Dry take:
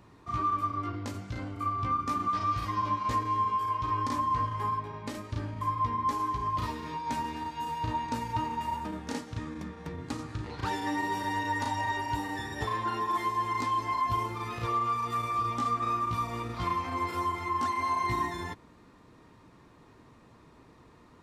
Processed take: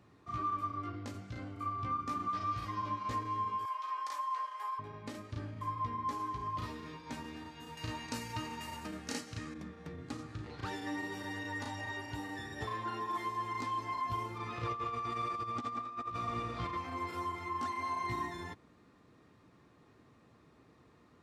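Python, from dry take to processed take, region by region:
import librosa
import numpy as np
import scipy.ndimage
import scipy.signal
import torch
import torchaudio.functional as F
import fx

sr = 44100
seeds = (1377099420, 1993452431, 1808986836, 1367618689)

y = fx.chain(x, sr, fx.highpass(hz=660.0, slope=24),
    fx.high_shelf(hz=9900.0, db=8.5), at=(3.65, 4.79))
y = fx.chain(y, sr, fx.high_shelf(hz=2100.0, db=11.5),
    fx.notch(hz=3500.0, q=9.2), at=(7.77, 9.54))
y = fx.chain(y, sr, fx.echo_heads(ms=84, heads='all three', feedback_pct=49, wet_db=-10.0),
    fx.over_compress(threshold_db=-30.0, ratio=-0.5),
    fx.air_absorb(metres=55.0), at=(14.38, 16.77))
y = scipy.signal.sosfilt(scipy.signal.butter(2, 67.0, 'highpass', fs=sr, output='sos'), y)
y = fx.high_shelf(y, sr, hz=9400.0, db=-5.0)
y = fx.notch(y, sr, hz=950.0, q=8.1)
y = F.gain(torch.from_numpy(y), -6.0).numpy()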